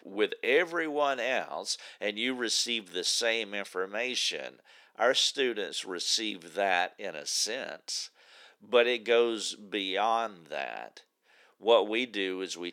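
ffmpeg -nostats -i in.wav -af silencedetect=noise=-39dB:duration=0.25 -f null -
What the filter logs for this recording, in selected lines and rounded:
silence_start: 4.49
silence_end: 4.98 | silence_duration: 0.49
silence_start: 8.06
silence_end: 8.72 | silence_duration: 0.66
silence_start: 10.97
silence_end: 11.63 | silence_duration: 0.66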